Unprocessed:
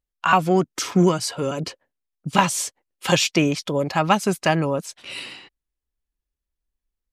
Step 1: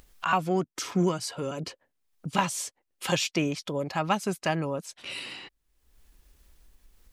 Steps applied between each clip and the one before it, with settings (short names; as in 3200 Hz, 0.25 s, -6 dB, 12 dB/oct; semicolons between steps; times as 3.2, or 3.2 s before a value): upward compressor, threshold -22 dBFS; gain -8 dB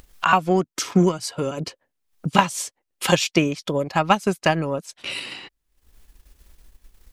transient shaper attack +4 dB, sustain -6 dB; gain +6 dB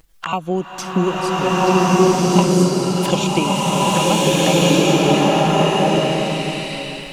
envelope flanger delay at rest 6.7 ms, full sweep at -18 dBFS; bloom reverb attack 1.56 s, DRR -10 dB; gain -1 dB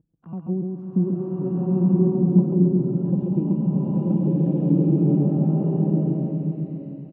Butterworth band-pass 170 Hz, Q 0.91; on a send: feedback echo 0.137 s, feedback 25%, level -3.5 dB; on the sum: gain -1.5 dB